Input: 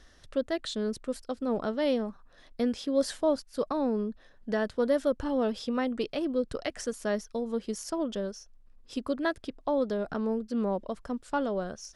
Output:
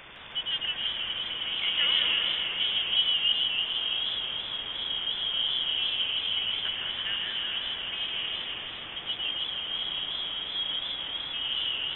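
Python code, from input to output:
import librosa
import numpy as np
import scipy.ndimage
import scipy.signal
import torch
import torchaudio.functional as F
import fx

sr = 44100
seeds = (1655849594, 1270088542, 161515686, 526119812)

p1 = fx.low_shelf(x, sr, hz=200.0, db=-11.5)
p2 = fx.leveller(p1, sr, passes=2, at=(1.57, 2.72))
p3 = (np.mod(10.0 ** (31.0 / 20.0) * p2 + 1.0, 2.0) - 1.0) / 10.0 ** (31.0 / 20.0)
p4 = p2 + (p3 * 10.0 ** (-12.0 / 20.0))
p5 = fx.filter_lfo_lowpass(p4, sr, shape='sine', hz=0.17, low_hz=220.0, high_hz=2500.0, q=1.5)
p6 = fx.vibrato(p5, sr, rate_hz=1.6, depth_cents=78.0)
p7 = fx.quant_dither(p6, sr, seeds[0], bits=6, dither='triangular')
p8 = fx.air_absorb(p7, sr, metres=97.0)
p9 = p8 + fx.echo_alternate(p8, sr, ms=104, hz=1000.0, feedback_pct=81, wet_db=-2, dry=0)
p10 = fx.freq_invert(p9, sr, carrier_hz=3500)
p11 = fx.echo_warbled(p10, sr, ms=160, feedback_pct=63, rate_hz=2.8, cents=117, wet_db=-4)
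y = p11 * 10.0 ** (-3.5 / 20.0)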